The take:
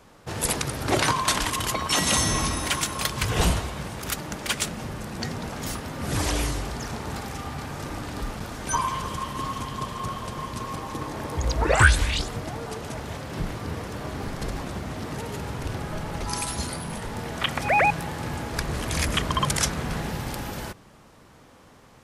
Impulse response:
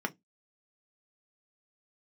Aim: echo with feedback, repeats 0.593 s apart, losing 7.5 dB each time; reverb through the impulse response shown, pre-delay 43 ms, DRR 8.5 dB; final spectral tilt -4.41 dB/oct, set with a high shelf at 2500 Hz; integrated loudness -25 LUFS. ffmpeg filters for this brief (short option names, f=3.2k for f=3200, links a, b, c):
-filter_complex "[0:a]highshelf=f=2.5k:g=-6,aecho=1:1:593|1186|1779|2372|2965:0.422|0.177|0.0744|0.0312|0.0131,asplit=2[a][b];[1:a]atrim=start_sample=2205,adelay=43[c];[b][c]afir=irnorm=-1:irlink=0,volume=-14dB[d];[a][d]amix=inputs=2:normalize=0,volume=2.5dB"